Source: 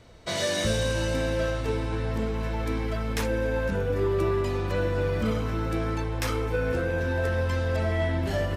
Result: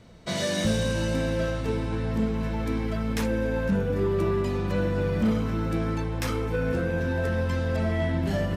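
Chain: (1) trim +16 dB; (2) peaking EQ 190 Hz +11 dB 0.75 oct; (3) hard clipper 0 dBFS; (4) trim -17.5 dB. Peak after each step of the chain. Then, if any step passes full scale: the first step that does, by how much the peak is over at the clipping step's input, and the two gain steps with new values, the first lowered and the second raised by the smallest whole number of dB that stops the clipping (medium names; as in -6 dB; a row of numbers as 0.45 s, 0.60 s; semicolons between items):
+2.0 dBFS, +5.5 dBFS, 0.0 dBFS, -17.5 dBFS; step 1, 5.5 dB; step 1 +10 dB, step 4 -11.5 dB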